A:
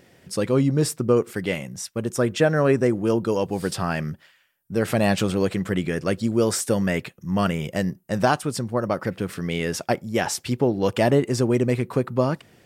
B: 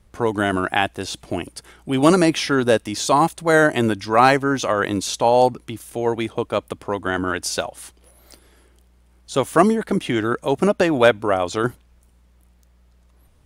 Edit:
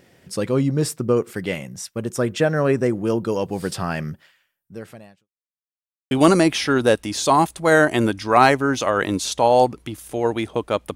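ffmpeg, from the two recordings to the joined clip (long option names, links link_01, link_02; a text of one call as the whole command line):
ffmpeg -i cue0.wav -i cue1.wav -filter_complex "[0:a]apad=whole_dur=10.95,atrim=end=10.95,asplit=2[link_01][link_02];[link_01]atrim=end=5.29,asetpts=PTS-STARTPTS,afade=type=out:start_time=4.27:duration=1.02:curve=qua[link_03];[link_02]atrim=start=5.29:end=6.11,asetpts=PTS-STARTPTS,volume=0[link_04];[1:a]atrim=start=1.93:end=6.77,asetpts=PTS-STARTPTS,afade=type=in:duration=0.004:curve=hsin[link_05];[link_03][link_04][link_05]concat=n=3:v=0:a=1" out.wav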